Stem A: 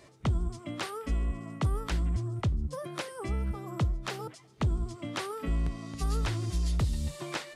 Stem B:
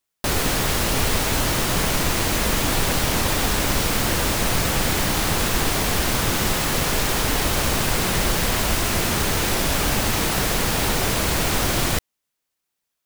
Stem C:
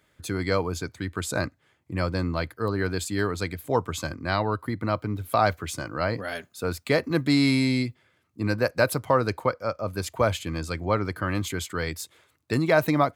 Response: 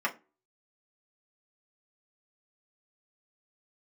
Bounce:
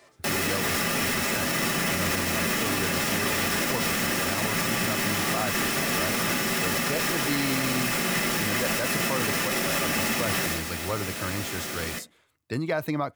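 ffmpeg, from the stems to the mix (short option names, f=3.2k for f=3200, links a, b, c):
-filter_complex "[0:a]volume=0.5dB,asplit=2[a][b];[b]volume=-14dB[c];[1:a]equalizer=f=1k:w=1:g=-9,volume=-2.5dB,afade=t=out:st=10.33:d=0.28:silence=0.281838,asplit=2[d][e];[e]volume=-4dB[f];[2:a]volume=-5dB[g];[a][d]amix=inputs=2:normalize=0,highpass=530,alimiter=limit=-23.5dB:level=0:latency=1,volume=0dB[h];[3:a]atrim=start_sample=2205[i];[c][f]amix=inputs=2:normalize=0[j];[j][i]afir=irnorm=-1:irlink=0[k];[g][h][k]amix=inputs=3:normalize=0,alimiter=limit=-16dB:level=0:latency=1"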